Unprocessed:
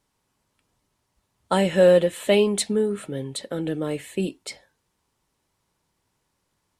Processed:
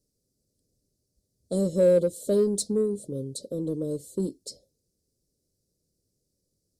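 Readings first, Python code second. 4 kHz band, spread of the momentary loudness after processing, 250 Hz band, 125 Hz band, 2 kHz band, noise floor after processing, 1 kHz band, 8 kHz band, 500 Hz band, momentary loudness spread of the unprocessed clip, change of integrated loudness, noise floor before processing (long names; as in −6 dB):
−11.5 dB, 14 LU, −3.0 dB, −3.0 dB, below −15 dB, −79 dBFS, below −20 dB, −3.0 dB, −4.0 dB, 15 LU, −4.0 dB, −75 dBFS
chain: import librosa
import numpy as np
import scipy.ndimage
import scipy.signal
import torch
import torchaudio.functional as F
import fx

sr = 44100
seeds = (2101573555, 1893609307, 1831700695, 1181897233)

p1 = scipy.signal.sosfilt(scipy.signal.ellip(3, 1.0, 40, [530.0, 4700.0], 'bandstop', fs=sr, output='sos'), x)
p2 = 10.0 ** (-22.0 / 20.0) * np.tanh(p1 / 10.0 ** (-22.0 / 20.0))
p3 = p1 + (p2 * 10.0 ** (-9.0 / 20.0))
y = p3 * 10.0 ** (-4.0 / 20.0)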